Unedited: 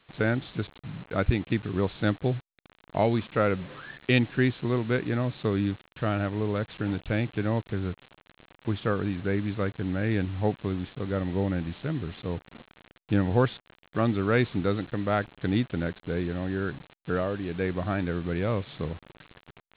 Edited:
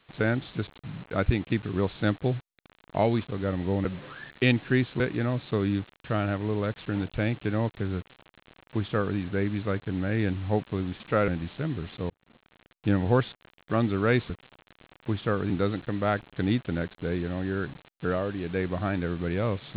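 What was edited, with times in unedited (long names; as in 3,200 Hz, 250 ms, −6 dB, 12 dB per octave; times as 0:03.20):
0:03.24–0:03.52: swap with 0:10.92–0:11.53
0:04.67–0:04.92: remove
0:07.89–0:09.09: duplicate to 0:14.55
0:12.35–0:13.16: fade in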